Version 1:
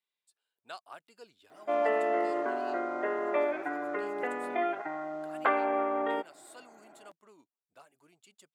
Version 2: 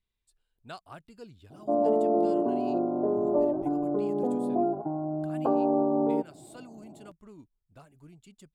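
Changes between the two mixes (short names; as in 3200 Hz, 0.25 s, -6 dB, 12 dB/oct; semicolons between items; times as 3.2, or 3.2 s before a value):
background: add steep low-pass 940 Hz 36 dB/oct; master: remove HPF 560 Hz 12 dB/oct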